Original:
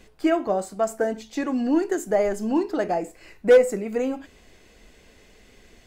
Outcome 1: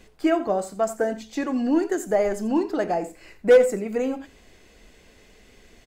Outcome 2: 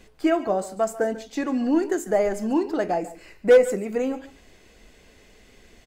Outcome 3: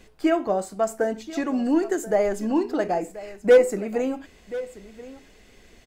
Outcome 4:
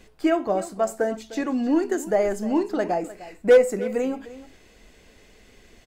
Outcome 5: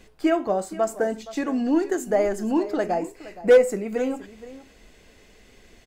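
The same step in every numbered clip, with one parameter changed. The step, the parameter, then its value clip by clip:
single-tap delay, delay time: 87, 144, 1,032, 304, 469 milliseconds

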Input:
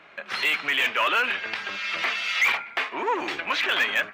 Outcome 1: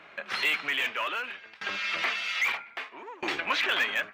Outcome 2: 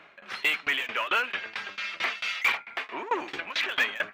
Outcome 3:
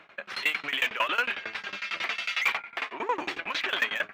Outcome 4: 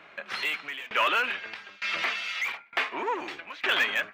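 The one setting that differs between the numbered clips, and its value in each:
shaped tremolo, speed: 0.62, 4.5, 11, 1.1 Hertz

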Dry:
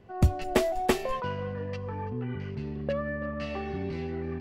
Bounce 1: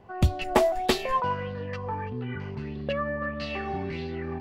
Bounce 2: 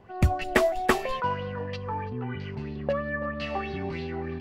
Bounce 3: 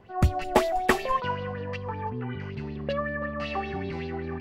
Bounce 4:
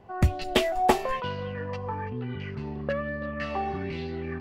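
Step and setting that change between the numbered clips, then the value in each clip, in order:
auto-filter bell, speed: 1.6, 3.1, 5.3, 1.1 Hertz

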